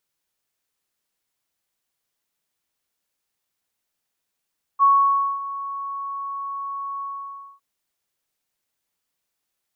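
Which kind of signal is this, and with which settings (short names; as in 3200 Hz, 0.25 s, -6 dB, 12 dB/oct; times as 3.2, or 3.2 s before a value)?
ADSR sine 1110 Hz, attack 38 ms, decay 0.563 s, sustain -16 dB, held 2.22 s, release 0.588 s -11 dBFS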